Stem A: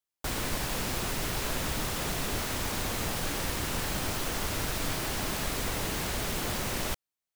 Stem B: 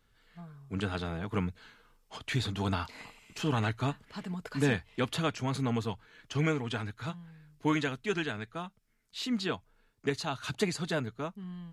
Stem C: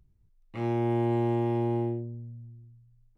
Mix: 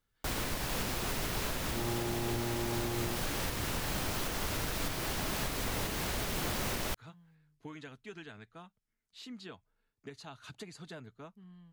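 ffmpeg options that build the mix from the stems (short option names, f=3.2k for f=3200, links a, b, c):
-filter_complex "[0:a]equalizer=f=8.2k:t=o:w=0.77:g=-2,volume=0.5dB[a];[1:a]acompressor=threshold=-30dB:ratio=6,volume=-12dB[b];[2:a]adelay=1150,volume=-4dB[c];[a][b][c]amix=inputs=3:normalize=0,alimiter=limit=-24dB:level=0:latency=1:release=386"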